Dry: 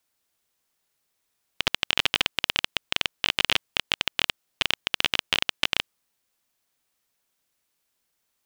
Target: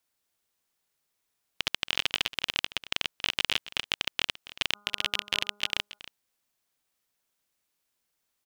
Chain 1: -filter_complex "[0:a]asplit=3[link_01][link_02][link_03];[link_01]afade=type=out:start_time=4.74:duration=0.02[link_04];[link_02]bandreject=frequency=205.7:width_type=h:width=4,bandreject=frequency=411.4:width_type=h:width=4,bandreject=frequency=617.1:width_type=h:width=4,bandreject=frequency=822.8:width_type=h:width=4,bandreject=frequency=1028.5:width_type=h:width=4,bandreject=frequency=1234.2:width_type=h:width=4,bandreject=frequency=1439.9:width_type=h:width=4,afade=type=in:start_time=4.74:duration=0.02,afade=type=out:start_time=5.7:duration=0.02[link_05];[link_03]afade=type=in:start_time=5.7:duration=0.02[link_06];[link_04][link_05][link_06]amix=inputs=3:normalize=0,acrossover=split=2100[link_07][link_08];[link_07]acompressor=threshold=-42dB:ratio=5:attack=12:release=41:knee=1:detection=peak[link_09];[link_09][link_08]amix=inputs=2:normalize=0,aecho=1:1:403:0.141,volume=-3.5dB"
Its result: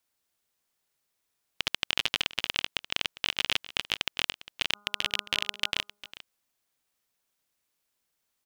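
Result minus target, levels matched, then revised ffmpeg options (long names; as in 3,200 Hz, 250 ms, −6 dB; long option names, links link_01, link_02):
echo 126 ms late
-filter_complex "[0:a]asplit=3[link_01][link_02][link_03];[link_01]afade=type=out:start_time=4.74:duration=0.02[link_04];[link_02]bandreject=frequency=205.7:width_type=h:width=4,bandreject=frequency=411.4:width_type=h:width=4,bandreject=frequency=617.1:width_type=h:width=4,bandreject=frequency=822.8:width_type=h:width=4,bandreject=frequency=1028.5:width_type=h:width=4,bandreject=frequency=1234.2:width_type=h:width=4,bandreject=frequency=1439.9:width_type=h:width=4,afade=type=in:start_time=4.74:duration=0.02,afade=type=out:start_time=5.7:duration=0.02[link_05];[link_03]afade=type=in:start_time=5.7:duration=0.02[link_06];[link_04][link_05][link_06]amix=inputs=3:normalize=0,acrossover=split=2100[link_07][link_08];[link_07]acompressor=threshold=-42dB:ratio=5:attack=12:release=41:knee=1:detection=peak[link_09];[link_09][link_08]amix=inputs=2:normalize=0,aecho=1:1:277:0.141,volume=-3.5dB"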